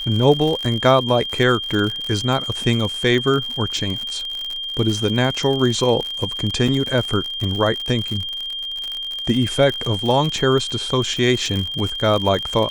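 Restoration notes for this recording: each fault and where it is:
surface crackle 67 per second −23 dBFS
whistle 3,200 Hz −25 dBFS
0:06.68: drop-out 4 ms

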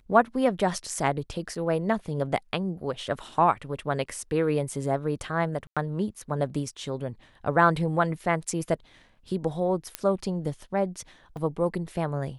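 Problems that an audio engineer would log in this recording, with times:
0:01.55: drop-out 4.6 ms
0:05.67–0:05.77: drop-out 96 ms
0:09.95: click −11 dBFS
0:11.37: drop-out 2.7 ms

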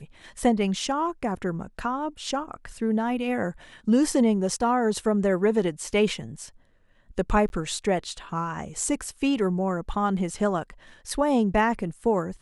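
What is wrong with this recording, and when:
0:07.49–0:07.50: drop-out 11 ms

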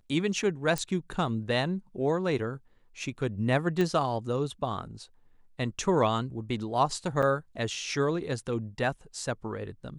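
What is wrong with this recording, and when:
0:00.78: click −15 dBFS
0:03.81: click −16 dBFS
0:07.22–0:07.23: drop-out 6.7 ms

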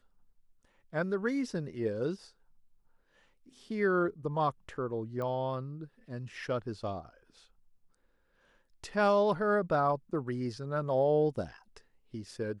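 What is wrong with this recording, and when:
0:05.22: click −26 dBFS

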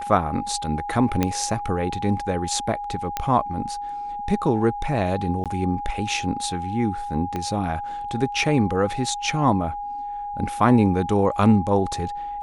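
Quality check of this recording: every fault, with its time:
whistle 820 Hz −28 dBFS
0:01.23: click −7 dBFS
0:03.17: click −9 dBFS
0:05.44–0:05.46: drop-out 17 ms
0:07.36: click −15 dBFS

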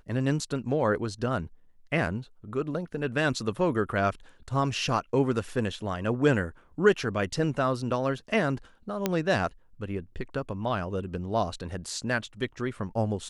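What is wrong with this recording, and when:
0:09.06: click −10 dBFS

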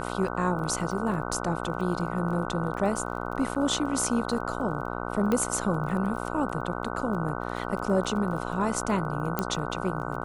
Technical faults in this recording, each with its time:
mains buzz 60 Hz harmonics 25 −33 dBFS
surface crackle 22 per second −37 dBFS
0:03.55–0:03.56: drop-out 6.4 ms
0:05.32: click −14 dBFS
0:09.39: click −11 dBFS

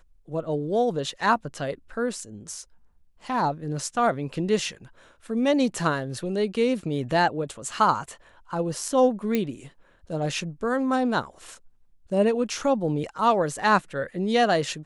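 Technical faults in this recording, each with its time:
0:09.35: click −11 dBFS

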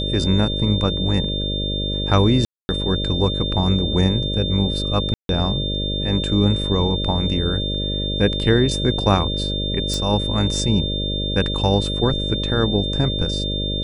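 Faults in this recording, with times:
mains buzz 50 Hz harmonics 12 −25 dBFS
whistle 3,600 Hz −25 dBFS
0:02.45–0:02.69: drop-out 240 ms
0:05.14–0:05.29: drop-out 152 ms
0:09.94: click

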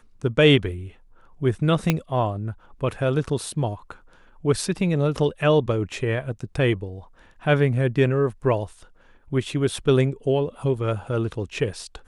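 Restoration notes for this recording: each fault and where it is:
0:01.90: click −5 dBFS

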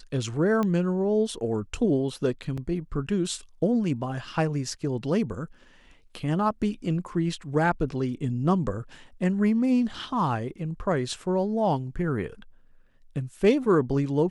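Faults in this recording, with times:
0:00.63: click −16 dBFS
0:02.57–0:02.58: drop-out 6.3 ms

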